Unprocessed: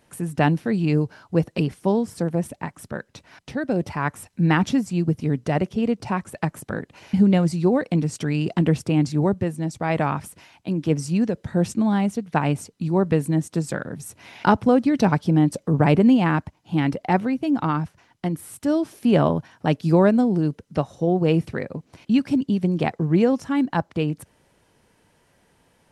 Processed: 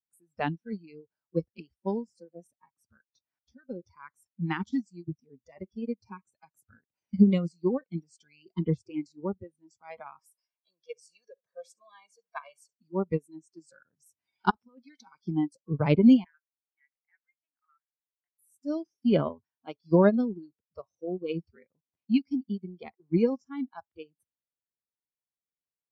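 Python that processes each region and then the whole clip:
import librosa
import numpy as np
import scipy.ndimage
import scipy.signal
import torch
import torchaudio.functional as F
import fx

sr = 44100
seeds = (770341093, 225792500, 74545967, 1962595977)

y = fx.chain(x, sr, fx.highpass(hz=560.0, slope=12),
    fx.comb(ms=1.8, depth=0.88),
    fx.echo_feedback(ms=70, feedback_pct=54, wet_db=-23.0), at=(10.19, 12.74))
y = fx.chain(y, sr, fx.highpass(hz=790.0, slope=6),
    fx.over_compress(threshold_db=-25.0, ratio=-0.5), at=(14.5, 15.22))
y = fx.chain(y, sr, fx.ladder_bandpass(hz=2000.0, resonance_pct=55),
    fx.air_absorb(metres=160.0), at=(16.24, 18.39))
y = fx.noise_reduce_blind(y, sr, reduce_db=24)
y = fx.upward_expand(y, sr, threshold_db=-28.0, expansion=2.5)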